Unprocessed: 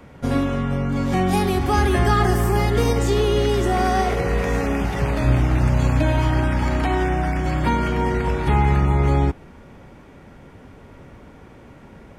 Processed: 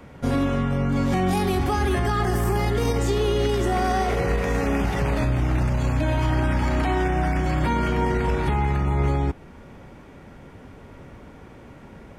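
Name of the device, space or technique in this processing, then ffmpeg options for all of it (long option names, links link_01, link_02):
stacked limiters: -af "alimiter=limit=-10dB:level=0:latency=1:release=398,alimiter=limit=-14dB:level=0:latency=1:release=17"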